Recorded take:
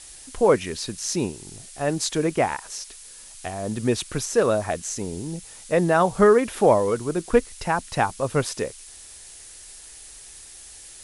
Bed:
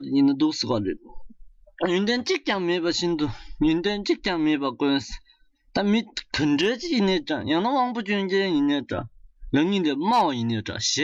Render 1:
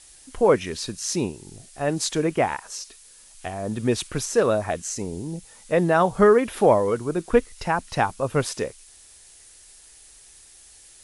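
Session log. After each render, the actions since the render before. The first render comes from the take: noise print and reduce 6 dB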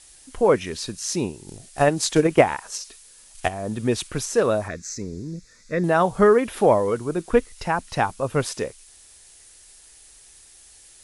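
1.48–3.49 transient shaper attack +11 dB, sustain +2 dB; 4.68–5.84 fixed phaser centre 3000 Hz, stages 6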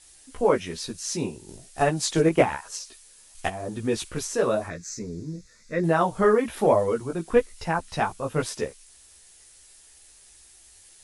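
chorus voices 2, 1.1 Hz, delay 15 ms, depth 3.6 ms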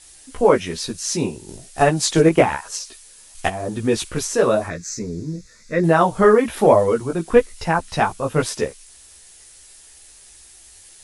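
gain +6.5 dB; limiter -1 dBFS, peak gain reduction 3 dB

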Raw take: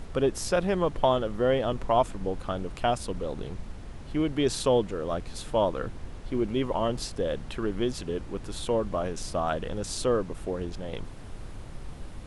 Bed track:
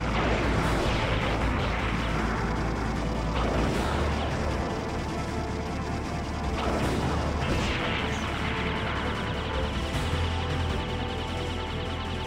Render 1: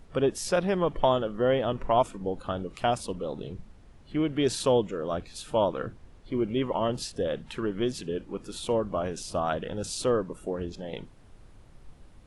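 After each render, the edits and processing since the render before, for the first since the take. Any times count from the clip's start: noise print and reduce 12 dB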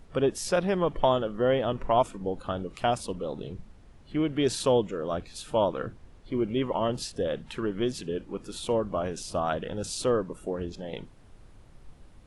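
nothing audible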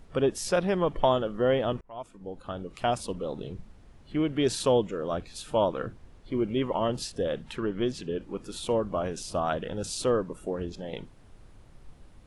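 1.81–3.01 fade in linear; 7.56–8.21 air absorption 51 m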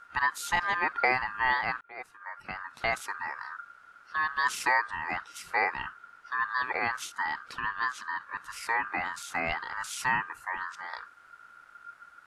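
ring modulator 1400 Hz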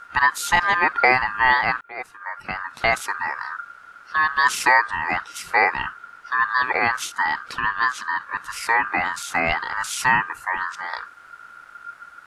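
gain +9.5 dB; limiter -1 dBFS, peak gain reduction 1 dB

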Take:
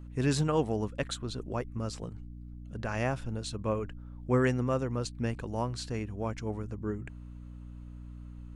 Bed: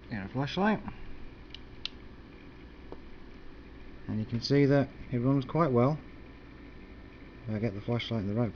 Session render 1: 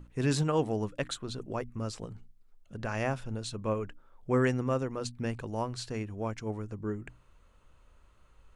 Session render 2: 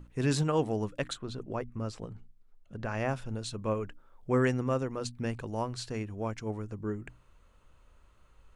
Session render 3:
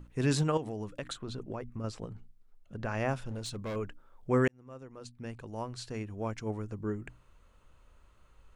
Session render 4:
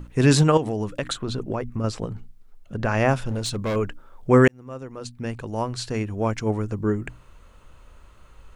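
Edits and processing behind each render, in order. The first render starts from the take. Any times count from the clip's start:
notches 60/120/180/240/300 Hz
1.13–3.09 high shelf 4100 Hz -8.5 dB
0.57–1.84 compressor, threshold -33 dBFS; 3.27–3.76 overloaded stage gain 33.5 dB; 4.48–6.47 fade in
gain +11.5 dB

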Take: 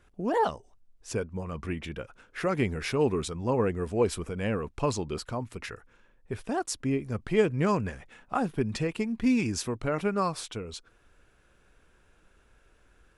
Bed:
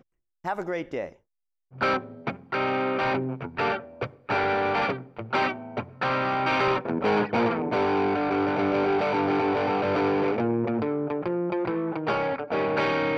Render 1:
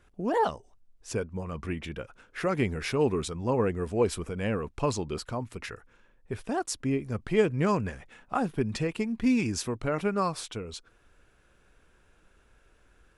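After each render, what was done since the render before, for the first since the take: nothing audible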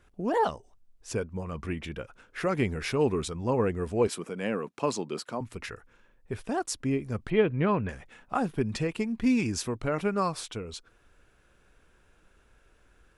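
4.07–5.41 HPF 170 Hz 24 dB/oct; 7.3–7.89 steep low-pass 4200 Hz 96 dB/oct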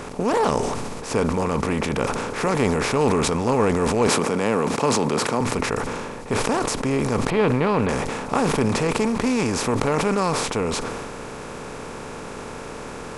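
per-bin compression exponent 0.4; sustainer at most 25 dB/s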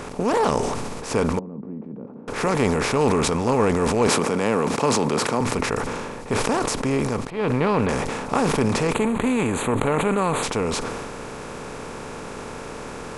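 1.39–2.28 ladder band-pass 240 Hz, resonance 45%; 6.95–7.67 dip -14.5 dB, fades 0.36 s equal-power; 8.94–10.43 Butterworth band-stop 5300 Hz, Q 1.7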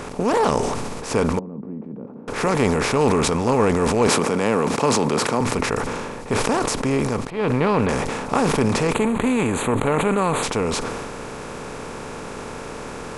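gain +1.5 dB; limiter -3 dBFS, peak gain reduction 2 dB

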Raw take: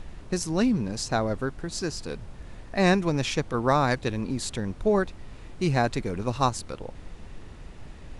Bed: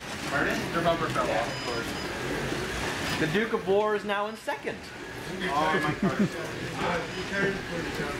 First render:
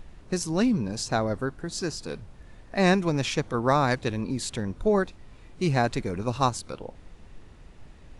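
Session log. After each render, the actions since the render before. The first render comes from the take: noise print and reduce 6 dB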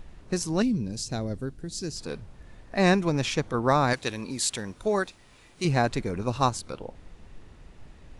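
0.62–1.96 bell 1100 Hz -14.5 dB 2.1 oct; 3.93–5.65 tilt +2.5 dB/oct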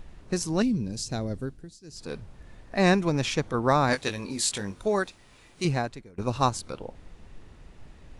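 1.45–2.15 dip -23 dB, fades 0.34 s; 3.87–4.81 doubler 20 ms -7 dB; 5.66–6.18 fade out quadratic, to -22 dB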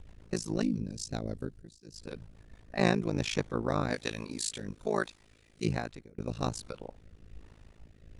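rotary speaker horn 7.5 Hz, later 1.2 Hz, at 2.15; AM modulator 54 Hz, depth 100%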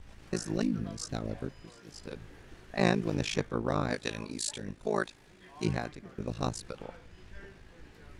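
add bed -25 dB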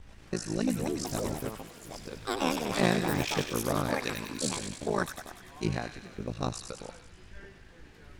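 echoes that change speed 0.442 s, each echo +6 st, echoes 2; thin delay 97 ms, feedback 62%, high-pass 1800 Hz, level -5.5 dB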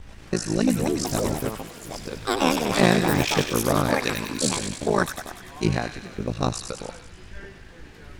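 gain +8 dB; limiter -1 dBFS, peak gain reduction 1 dB

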